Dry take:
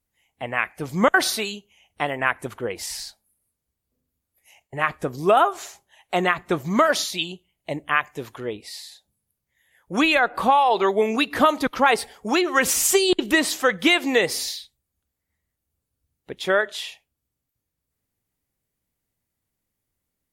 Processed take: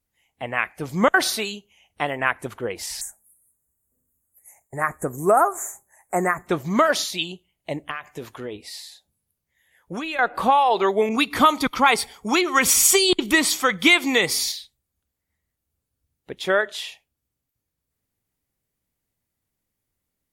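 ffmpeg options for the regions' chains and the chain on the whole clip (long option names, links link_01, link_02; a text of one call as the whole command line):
ffmpeg -i in.wav -filter_complex "[0:a]asettb=1/sr,asplit=3[link_01][link_02][link_03];[link_01]atrim=end=3.014[link_04];[link_02]atrim=start=3.01:end=6.47,asetpts=PTS-STARTPTS,afade=type=in:duration=0.004:curve=qsin,afade=type=out:start_time=3.456:duration=0.004:curve=qsin,asuperstop=centerf=3800:order=8:qfactor=0.8,highshelf=frequency=5600:width_type=q:width=1.5:gain=10[link_05];[link_03]atrim=start=6.466[link_06];[link_04][link_05]acrossfade=duration=0.004:curve1=hsin:curve2=qsin[link_07];[link_07][link_06]acrossfade=duration=0.004:curve1=qsin:curve2=hsin,asettb=1/sr,asplit=3[link_08][link_09][link_10];[link_08]atrim=end=7.904[link_11];[link_09]atrim=start=7.9:end=10.19,asetpts=PTS-STARTPTS,afade=type=in:duration=0.004:curve=qsin,afade=type=out:start_time=2.286:duration=0.004:curve=qsin,asplit=2[link_12][link_13];[link_13]adelay=12,volume=-13dB[link_14];[link_12][link_14]amix=inputs=2:normalize=0,atrim=end_sample=100989,acompressor=threshold=-27dB:ratio=5:attack=3.2:release=140:knee=1:detection=peak[link_15];[link_10]atrim=start=10.186[link_16];[link_11][link_15]acrossfade=duration=0.004:curve1=hsin:curve2=qsin[link_17];[link_17][link_16]acrossfade=duration=0.004:curve1=qsin:curve2=hsin,asettb=1/sr,asplit=3[link_18][link_19][link_20];[link_18]atrim=end=11.094[link_21];[link_19]atrim=start=11.09:end=14.52,asetpts=PTS-STARTPTS,afade=type=in:duration=0.004:curve=qsin,afade=type=out:start_time=3.426:duration=0.004:curve=qsin,aecho=1:1:0.9:0.4,atrim=end_sample=151263,adynamicequalizer=threshold=0.0316:dfrequency=2000:dqfactor=0.7:tfrequency=2000:tqfactor=0.7:attack=5:release=100:ratio=0.375:range=2:mode=boostabove:tftype=highshelf[link_22];[link_20]atrim=start=14.516[link_23];[link_21][link_22]acrossfade=duration=0.004:curve1=hsin:curve2=qsin[link_24];[link_24][link_23]acrossfade=duration=0.004:curve1=qsin:curve2=hsin" out.wav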